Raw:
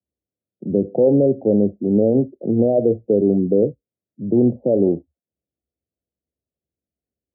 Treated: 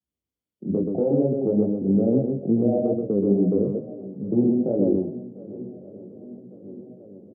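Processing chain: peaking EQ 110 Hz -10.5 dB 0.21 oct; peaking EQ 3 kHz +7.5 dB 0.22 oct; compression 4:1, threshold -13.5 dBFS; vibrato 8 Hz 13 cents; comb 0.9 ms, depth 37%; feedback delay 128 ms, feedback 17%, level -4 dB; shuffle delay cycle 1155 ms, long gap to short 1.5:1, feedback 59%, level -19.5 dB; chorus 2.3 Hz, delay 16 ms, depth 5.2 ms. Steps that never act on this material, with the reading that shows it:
peaking EQ 3 kHz: input has nothing above 760 Hz

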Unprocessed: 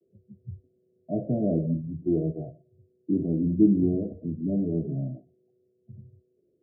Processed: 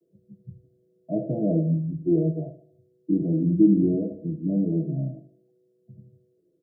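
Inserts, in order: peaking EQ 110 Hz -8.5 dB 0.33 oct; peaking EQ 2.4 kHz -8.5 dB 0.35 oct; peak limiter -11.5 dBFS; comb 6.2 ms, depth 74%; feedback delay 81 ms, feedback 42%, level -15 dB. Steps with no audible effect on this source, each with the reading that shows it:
peaking EQ 2.4 kHz: input has nothing above 720 Hz

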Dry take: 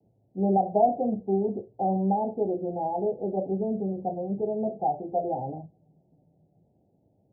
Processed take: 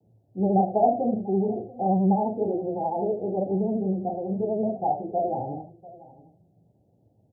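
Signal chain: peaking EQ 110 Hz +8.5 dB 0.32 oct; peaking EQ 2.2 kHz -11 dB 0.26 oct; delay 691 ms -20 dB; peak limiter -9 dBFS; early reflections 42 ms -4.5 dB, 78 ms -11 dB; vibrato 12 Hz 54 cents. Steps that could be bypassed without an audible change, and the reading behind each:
peaking EQ 2.2 kHz: input has nothing above 910 Hz; peak limiter -9 dBFS: peak at its input -11.0 dBFS

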